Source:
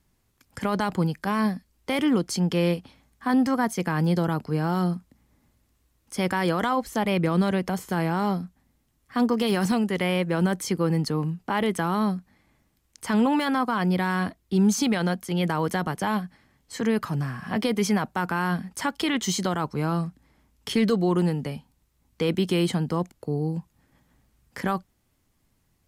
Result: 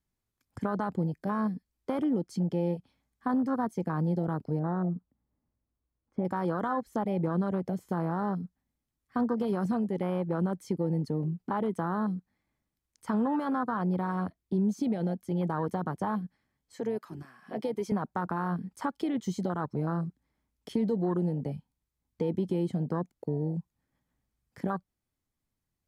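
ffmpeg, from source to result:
ffmpeg -i in.wav -filter_complex "[0:a]asettb=1/sr,asplit=3[link_01][link_02][link_03];[link_01]atrim=end=4.594[link_04];[link_02]atrim=start=4.59:end=6.25,asetpts=PTS-STARTPTS,afade=type=in:duration=0.004:curve=qsin,afade=type=out:start_time=1.656:duration=0.004:curve=qsin,lowpass=1200[link_05];[link_03]atrim=start=6.246[link_06];[link_04][link_05]acrossfade=duration=0.004:curve1=hsin:curve2=qsin[link_07];[link_07][link_06]acrossfade=duration=0.004:curve1=qsin:curve2=hsin,asettb=1/sr,asplit=3[link_08][link_09][link_10];[link_08]atrim=end=16.754[link_11];[link_09]atrim=start=16.75:end=17.92,asetpts=PTS-STARTPTS,afade=type=in:duration=0.004:curve=qsin,afade=type=out:start_time=1.166:duration=0.004:curve=qsin,highpass=370[link_12];[link_10]atrim=start=17.916[link_13];[link_11][link_12]acrossfade=duration=0.004:curve1=hsin:curve2=qsin[link_14];[link_14][link_13]acrossfade=duration=0.004:curve1=qsin:curve2=hsin,bandreject=frequency=2800:width=20,afwtdn=0.0501,acompressor=threshold=-30dB:ratio=2" out.wav

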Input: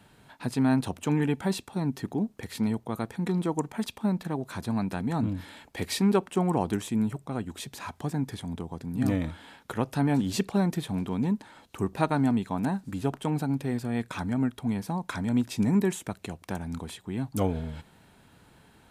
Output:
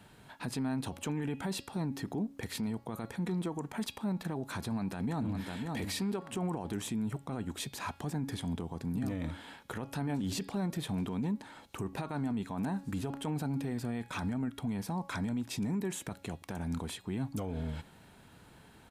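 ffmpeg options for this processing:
ffmpeg -i in.wav -filter_complex "[0:a]asplit=2[link_01][link_02];[link_02]afade=type=in:start_time=4.66:duration=0.01,afade=type=out:start_time=5.62:duration=0.01,aecho=0:1:550|1100|1650:0.354813|0.0887033|0.0221758[link_03];[link_01][link_03]amix=inputs=2:normalize=0,bandreject=frequency=277.6:width_type=h:width=4,bandreject=frequency=555.2:width_type=h:width=4,bandreject=frequency=832.8:width_type=h:width=4,bandreject=frequency=1110.4:width_type=h:width=4,bandreject=frequency=1388:width_type=h:width=4,bandreject=frequency=1665.6:width_type=h:width=4,bandreject=frequency=1943.2:width_type=h:width=4,bandreject=frequency=2220.8:width_type=h:width=4,bandreject=frequency=2498.4:width_type=h:width=4,bandreject=frequency=2776:width_type=h:width=4,bandreject=frequency=3053.6:width_type=h:width=4,bandreject=frequency=3331.2:width_type=h:width=4,bandreject=frequency=3608.8:width_type=h:width=4,bandreject=frequency=3886.4:width_type=h:width=4,bandreject=frequency=4164:width_type=h:width=4,bandreject=frequency=4441.6:width_type=h:width=4,bandreject=frequency=4719.2:width_type=h:width=4,bandreject=frequency=4996.8:width_type=h:width=4,bandreject=frequency=5274.4:width_type=h:width=4,acompressor=threshold=-27dB:ratio=5,alimiter=level_in=3dB:limit=-24dB:level=0:latency=1:release=19,volume=-3dB" out.wav

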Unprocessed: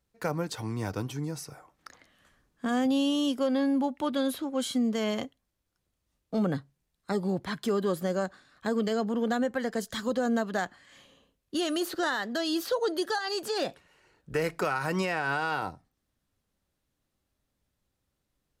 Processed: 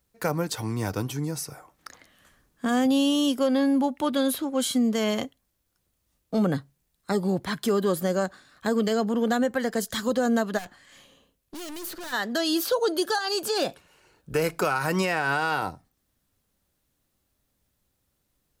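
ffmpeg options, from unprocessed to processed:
ffmpeg -i in.wav -filter_complex "[0:a]asplit=3[link_01][link_02][link_03];[link_01]afade=type=out:start_time=10.57:duration=0.02[link_04];[link_02]aeval=exprs='(tanh(112*val(0)+0.5)-tanh(0.5))/112':channel_layout=same,afade=type=in:start_time=10.57:duration=0.02,afade=type=out:start_time=12.12:duration=0.02[link_05];[link_03]afade=type=in:start_time=12.12:duration=0.02[link_06];[link_04][link_05][link_06]amix=inputs=3:normalize=0,asettb=1/sr,asplit=3[link_07][link_08][link_09];[link_07]atrim=end=12.644[link_10];[link_08]atrim=start=12.64:end=14.79,asetpts=PTS-STARTPTS,afade=type=in:duration=0.004:curve=qsin,afade=type=out:start_time=2.146:duration=0.004:curve=qsin,bandreject=frequency=1900:width=8.4[link_11];[link_09]atrim=start=14.786[link_12];[link_10][link_11]acrossfade=duration=0.004:curve1=hsin:curve2=qsin[link_13];[link_13][link_12]acrossfade=duration=0.004:curve1=qsin:curve2=hsin,highshelf=frequency=9200:gain=10,volume=4dB" out.wav

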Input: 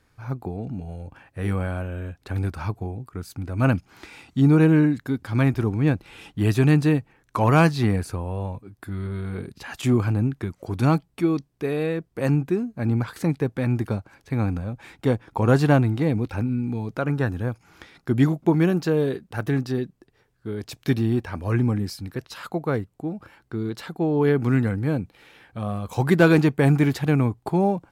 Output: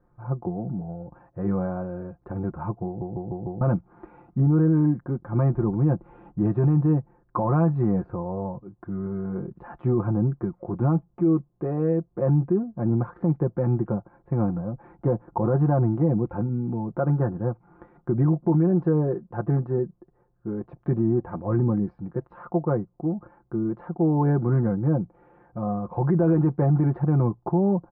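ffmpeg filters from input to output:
ffmpeg -i in.wav -filter_complex "[0:a]asplit=6[link_01][link_02][link_03][link_04][link_05][link_06];[link_01]atrim=end=3.012[link_07];[link_02]atrim=start=2.858:end=3.012[link_08];[link_03]atrim=start=2.858:end=3.012[link_09];[link_04]atrim=start=2.858:end=3.012[link_10];[link_05]atrim=start=2.858:end=3.012[link_11];[link_06]atrim=start=3.608[link_12];[link_07][link_08]acrossfade=duration=0.004:curve1=hsin:curve2=hsin[link_13];[link_13][link_09]acrossfade=duration=0.004:curve1=hsin:curve2=hsin[link_14];[link_14][link_10]acrossfade=duration=0.004:curve1=hsin:curve2=hsin[link_15];[link_15][link_11]acrossfade=duration=0.004:curve1=hsin:curve2=hsin[link_16];[link_16][link_12]acrossfade=duration=0.004:curve1=hsin:curve2=hsin,lowpass=frequency=1100:width=0.5412,lowpass=frequency=1100:width=1.3066,aecho=1:1:5.7:0.74,alimiter=limit=-13.5dB:level=0:latency=1:release=33" out.wav

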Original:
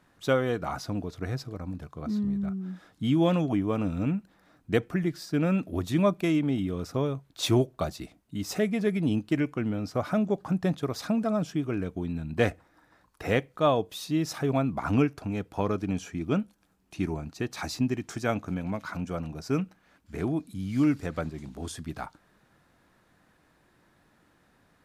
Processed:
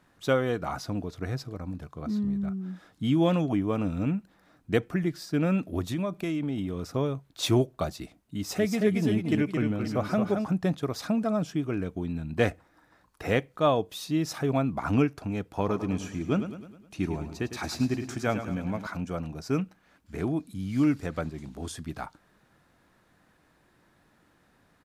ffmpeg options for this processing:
ffmpeg -i in.wav -filter_complex "[0:a]asettb=1/sr,asplit=3[link_01][link_02][link_03];[link_01]atrim=end=5.814[link_04];[link_02]atrim=start=5.81:end=6.85,asetpts=PTS-STARTPTS,afade=type=in:duration=0.004:curve=qsin,afade=type=out:start_time=1.036:duration=0.004:curve=qsin,acompressor=threshold=-26dB:ratio=6:attack=3.2:release=140:knee=1:detection=peak[link_05];[link_03]atrim=start=6.846[link_06];[link_04][link_05]acrossfade=duration=0.004:curve1=hsin:curve2=qsin[link_07];[link_07][link_06]acrossfade=duration=0.004:curve1=qsin:curve2=hsin,asplit=3[link_08][link_09][link_10];[link_08]afade=type=out:start_time=8.57:duration=0.02[link_11];[link_09]aecho=1:1:222|526:0.562|0.251,afade=type=in:start_time=8.57:duration=0.02,afade=type=out:start_time=10.44:duration=0.02[link_12];[link_10]afade=type=in:start_time=10.44:duration=0.02[link_13];[link_11][link_12][link_13]amix=inputs=3:normalize=0,asettb=1/sr,asplit=3[link_14][link_15][link_16];[link_14]atrim=end=15.514[link_17];[link_15]atrim=start=15.51:end=18.87,asetpts=PTS-STARTPTS,afade=type=in:duration=0.004:curve=qsin,afade=type=out:start_time=3.356:duration=0.004:curve=qsin,aecho=1:1:104|208|312|416|520|624:0.299|0.155|0.0807|0.042|0.0218|0.0114,atrim=end_sample=148176[link_18];[link_16]atrim=start=18.866[link_19];[link_17][link_18]acrossfade=duration=0.004:curve1=hsin:curve2=qsin[link_20];[link_20][link_19]acrossfade=duration=0.004:curve1=qsin:curve2=hsin" out.wav

